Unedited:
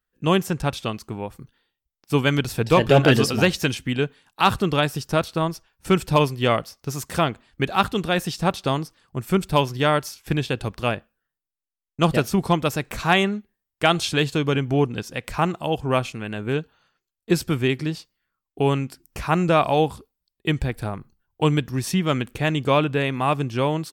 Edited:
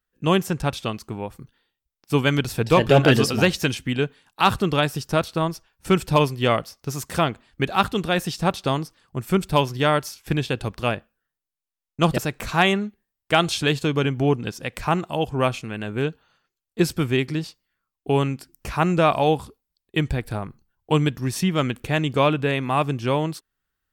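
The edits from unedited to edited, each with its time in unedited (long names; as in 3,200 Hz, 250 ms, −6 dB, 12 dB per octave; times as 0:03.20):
0:12.18–0:12.69: remove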